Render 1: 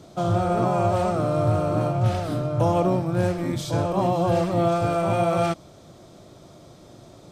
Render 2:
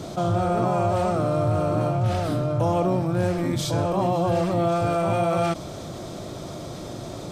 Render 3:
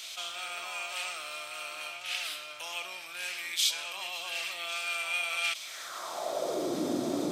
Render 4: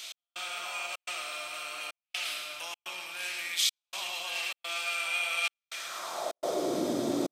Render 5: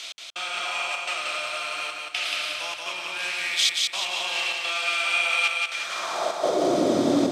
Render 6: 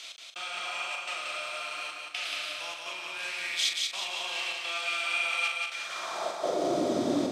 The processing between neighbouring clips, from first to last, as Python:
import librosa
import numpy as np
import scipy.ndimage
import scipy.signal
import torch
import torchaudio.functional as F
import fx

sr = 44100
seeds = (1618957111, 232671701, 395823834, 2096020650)

y1 = fx.env_flatten(x, sr, amount_pct=50)
y1 = y1 * 10.0 ** (-2.5 / 20.0)
y2 = fx.high_shelf(y1, sr, hz=11000.0, db=9.0)
y2 = fx.filter_sweep_highpass(y2, sr, from_hz=2600.0, to_hz=270.0, start_s=5.59, end_s=6.79, q=3.1)
y3 = fx.echo_feedback(y2, sr, ms=109, feedback_pct=59, wet_db=-6)
y3 = fx.step_gate(y3, sr, bpm=126, pattern='x..xxxxx.xxxxxx', floor_db=-60.0, edge_ms=4.5)
y4 = fx.air_absorb(y3, sr, metres=57.0)
y4 = fx.echo_feedback(y4, sr, ms=180, feedback_pct=41, wet_db=-3)
y4 = y4 * 10.0 ** (7.5 / 20.0)
y5 = fx.doubler(y4, sr, ms=41.0, db=-8)
y5 = y5 * 10.0 ** (-7.0 / 20.0)